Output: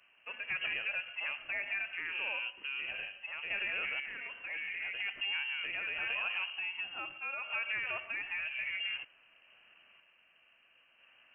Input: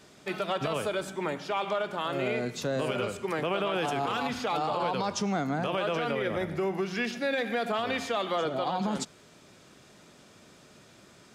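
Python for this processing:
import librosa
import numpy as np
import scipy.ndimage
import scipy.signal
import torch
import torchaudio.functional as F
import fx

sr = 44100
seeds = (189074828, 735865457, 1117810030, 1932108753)

y = fx.tremolo_random(x, sr, seeds[0], hz=2.0, depth_pct=55)
y = fx.freq_invert(y, sr, carrier_hz=3000)
y = fx.low_shelf(y, sr, hz=360.0, db=-10.5)
y = F.gain(torch.from_numpy(y), -5.5).numpy()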